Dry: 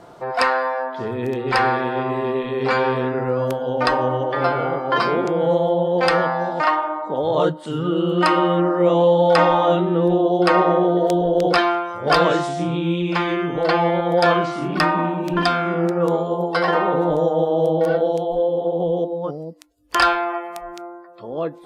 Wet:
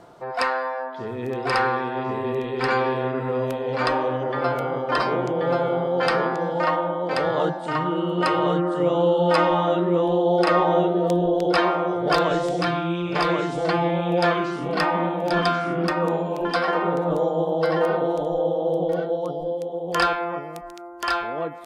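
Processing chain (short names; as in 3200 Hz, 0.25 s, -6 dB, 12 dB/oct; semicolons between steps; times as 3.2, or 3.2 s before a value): reverse; upward compressor, threshold -32 dBFS; reverse; echo 1.082 s -3 dB; gain -5 dB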